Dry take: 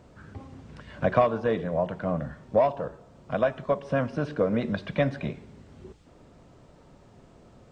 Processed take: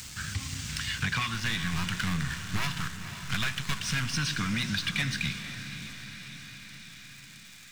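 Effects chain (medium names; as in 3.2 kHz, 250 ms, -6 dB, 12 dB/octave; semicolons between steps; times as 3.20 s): 1.34–4.14 s: partial rectifier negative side -7 dB; Chebyshev band-stop 130–2200 Hz, order 2; tone controls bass -11 dB, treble +13 dB; gain riding within 4 dB 0.5 s; waveshaping leveller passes 3; compression, threshold -32 dBFS, peak gain reduction 5.5 dB; echo that smears into a reverb 506 ms, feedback 59%, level -10 dB; tape noise reduction on one side only encoder only; trim +5.5 dB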